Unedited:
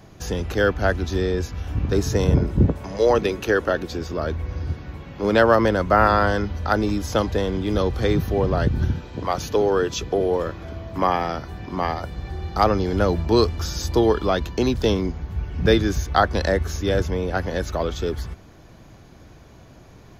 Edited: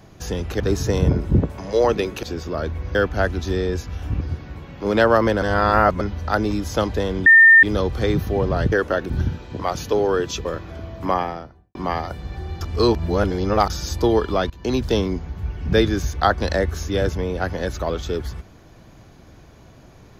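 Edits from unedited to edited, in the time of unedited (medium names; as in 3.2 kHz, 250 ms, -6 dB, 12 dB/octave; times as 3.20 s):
0.60–1.86 s: move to 4.59 s
3.49–3.87 s: move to 8.73 s
5.80–6.39 s: reverse
7.64 s: add tone 1.81 kHz -6 dBFS 0.37 s
10.08–10.38 s: delete
10.96–11.68 s: studio fade out
12.54–13.63 s: reverse
14.43–14.68 s: fade in, from -20.5 dB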